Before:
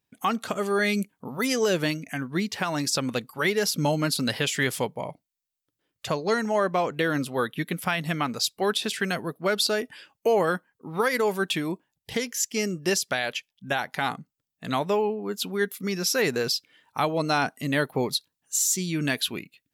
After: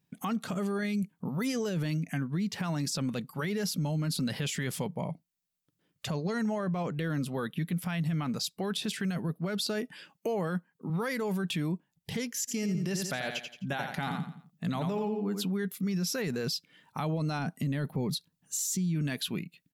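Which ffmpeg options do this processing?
-filter_complex "[0:a]asettb=1/sr,asplit=3[a][b][c];[a]atrim=end=9.604[d];[b]atrim=start=9.6:end=10.9,asetpts=PTS-STARTPTS,afade=t=in:d=0.004:c=qsin,afade=t=out:st=1.296:d=0.004:c=qsin,highpass=140[e];[c]atrim=start=10.896[f];[d][e]acrossfade=d=0.004:c1=hsin:c2=qsin[g];[g][f]acrossfade=d=0.004:c1=qsin:c2=hsin,asplit=3[h][i][j];[h]afade=t=out:st=12.47:d=0.02[k];[i]aecho=1:1:86|172|258|344:0.398|0.123|0.0383|0.0119,afade=t=in:st=12.47:d=0.02,afade=t=out:st=15.44:d=0.02[l];[j]afade=t=in:st=15.44:d=0.02[m];[k][l][m]amix=inputs=3:normalize=0,asettb=1/sr,asplit=3[n][o][p];[n]atrim=end=17.394[q];[o]atrim=start=17.39:end=18.95,asetpts=PTS-STARTPTS,afade=t=in:d=0.004:c=qsin,afade=t=out:st=1.556:d=0.004:c=qsin,lowshelf=f=320:g=6[r];[p]atrim=start=18.946[s];[q][r]acrossfade=d=0.004:c1=hsin:c2=qsin[t];[t][s]acrossfade=d=0.004:c1=qsin:c2=hsin,equalizer=f=170:w=1.6:g=14.5,alimiter=limit=-17.5dB:level=0:latency=1:release=11,acompressor=threshold=-40dB:ratio=1.5"

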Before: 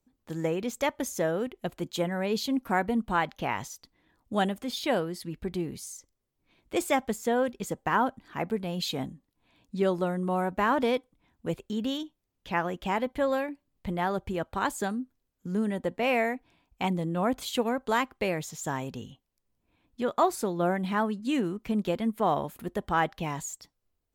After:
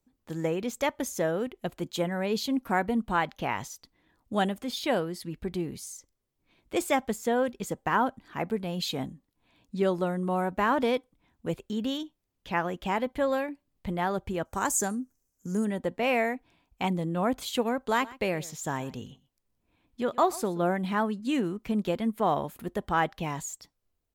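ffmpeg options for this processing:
-filter_complex "[0:a]asettb=1/sr,asplit=3[a][b][c];[a]atrim=end=14.454[d];[b]atrim=start=14.45:end=15.65,asetpts=PTS-STARTPTS,afade=t=in:d=0.004:c=qsin,afade=t=out:st=1.196:d=0.004:c=qsin,highshelf=f=4.9k:t=q:w=3:g=8.5[e];[c]atrim=start=15.646[f];[d][e]acrossfade=d=0.004:c1=hsin:c2=qsin[g];[g][f]acrossfade=d=0.004:c1=qsin:c2=hsin,asplit=3[h][i][j];[h]afade=t=out:st=17.93:d=0.02[k];[i]aecho=1:1:125:0.1,afade=t=in:st=17.93:d=0.02,afade=t=out:st=20.68:d=0.02[l];[j]afade=t=in:st=20.68:d=0.02[m];[k][l][m]amix=inputs=3:normalize=0"

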